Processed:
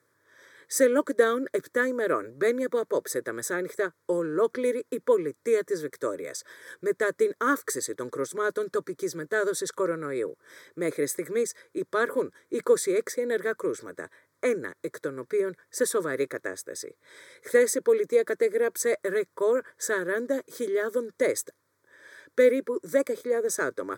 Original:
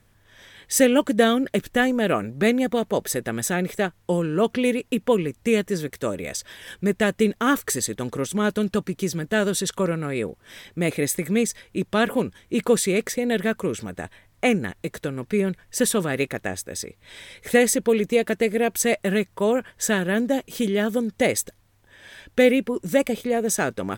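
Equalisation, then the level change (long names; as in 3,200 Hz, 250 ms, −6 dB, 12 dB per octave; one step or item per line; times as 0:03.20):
high-pass filter 160 Hz 24 dB per octave
high-shelf EQ 6,800 Hz −7 dB
phaser with its sweep stopped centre 760 Hz, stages 6
−1.0 dB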